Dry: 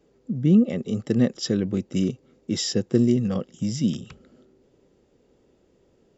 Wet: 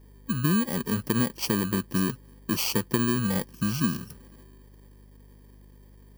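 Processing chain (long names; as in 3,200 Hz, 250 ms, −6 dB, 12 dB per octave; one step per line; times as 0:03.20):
samples in bit-reversed order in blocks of 32 samples
mains hum 50 Hz, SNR 27 dB
downward compressor 10 to 1, threshold −20 dBFS, peak gain reduction 8.5 dB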